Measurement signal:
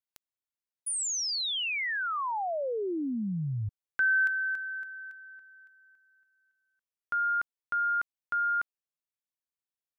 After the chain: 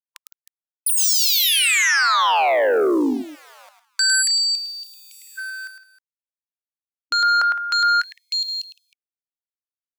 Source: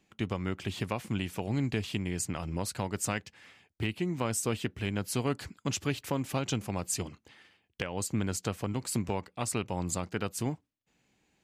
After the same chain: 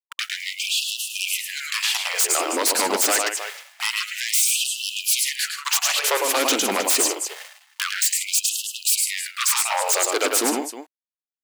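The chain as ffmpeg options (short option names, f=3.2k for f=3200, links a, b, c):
-af "bass=f=250:g=-15,treble=f=4k:g=4,aeval=exprs='val(0)*gte(abs(val(0)),0.002)':c=same,aecho=1:1:106|161|313:0.422|0.141|0.119,aeval=exprs='0.188*sin(PI/2*6.31*val(0)/0.188)':c=same,afftfilt=real='re*gte(b*sr/1024,210*pow(2600/210,0.5+0.5*sin(2*PI*0.26*pts/sr)))':imag='im*gte(b*sr/1024,210*pow(2600/210,0.5+0.5*sin(2*PI*0.26*pts/sr)))':win_size=1024:overlap=0.75"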